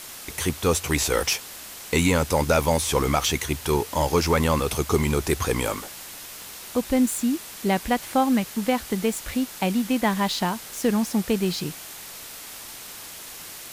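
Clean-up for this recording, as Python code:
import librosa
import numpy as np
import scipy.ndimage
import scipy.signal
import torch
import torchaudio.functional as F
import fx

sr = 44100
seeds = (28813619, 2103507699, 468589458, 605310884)

y = fx.fix_declick_ar(x, sr, threshold=10.0)
y = fx.noise_reduce(y, sr, print_start_s=12.77, print_end_s=13.27, reduce_db=29.0)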